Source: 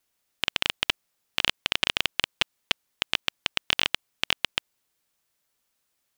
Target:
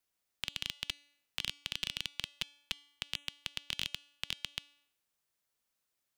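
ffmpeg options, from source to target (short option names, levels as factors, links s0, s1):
-filter_complex "[0:a]bandreject=f=288.1:t=h:w=4,bandreject=f=576.2:t=h:w=4,bandreject=f=864.3:t=h:w=4,bandreject=f=1152.4:t=h:w=4,bandreject=f=1440.5:t=h:w=4,bandreject=f=1728.6:t=h:w=4,bandreject=f=2016.7:t=h:w=4,bandreject=f=2304.8:t=h:w=4,bandreject=f=2592.9:t=h:w=4,bandreject=f=2881:t=h:w=4,bandreject=f=3169.1:t=h:w=4,bandreject=f=3457.2:t=h:w=4,bandreject=f=3745.3:t=h:w=4,bandreject=f=4033.4:t=h:w=4,bandreject=f=4321.5:t=h:w=4,bandreject=f=4609.6:t=h:w=4,bandreject=f=4897.7:t=h:w=4,bandreject=f=5185.8:t=h:w=4,bandreject=f=5473.9:t=h:w=4,bandreject=f=5762:t=h:w=4,bandreject=f=6050.1:t=h:w=4,bandreject=f=6338.2:t=h:w=4,bandreject=f=6626.3:t=h:w=4,bandreject=f=6914.4:t=h:w=4,bandreject=f=7202.5:t=h:w=4,bandreject=f=7490.6:t=h:w=4,bandreject=f=7778.7:t=h:w=4,bandreject=f=8066.8:t=h:w=4,bandreject=f=8354.9:t=h:w=4,bandreject=f=8643:t=h:w=4,bandreject=f=8931.1:t=h:w=4,bandreject=f=9219.2:t=h:w=4,bandreject=f=9507.3:t=h:w=4,bandreject=f=9795.4:t=h:w=4,bandreject=f=10083.5:t=h:w=4,bandreject=f=10371.6:t=h:w=4,bandreject=f=10659.7:t=h:w=4,bandreject=f=10947.8:t=h:w=4,acrossover=split=250|3000[s0][s1][s2];[s1]acompressor=threshold=0.0126:ratio=6[s3];[s0][s3][s2]amix=inputs=3:normalize=0,volume=0.398"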